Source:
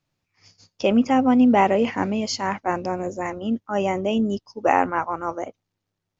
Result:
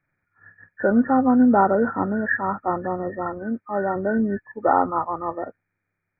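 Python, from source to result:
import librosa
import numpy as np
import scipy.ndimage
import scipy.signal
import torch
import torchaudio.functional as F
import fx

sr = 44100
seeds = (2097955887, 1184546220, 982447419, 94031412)

y = fx.freq_compress(x, sr, knee_hz=1200.0, ratio=4.0)
y = fx.low_shelf(y, sr, hz=190.0, db=-7.5, at=(3.43, 3.96))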